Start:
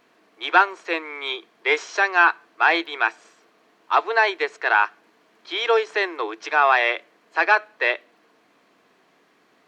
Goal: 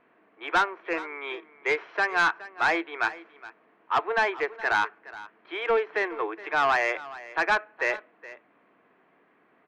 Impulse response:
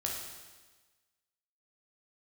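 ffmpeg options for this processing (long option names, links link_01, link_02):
-af "lowpass=frequency=2400:width=0.5412,lowpass=frequency=2400:width=1.3066,asoftclip=type=tanh:threshold=-13.5dB,aecho=1:1:419:0.133,volume=-2.5dB"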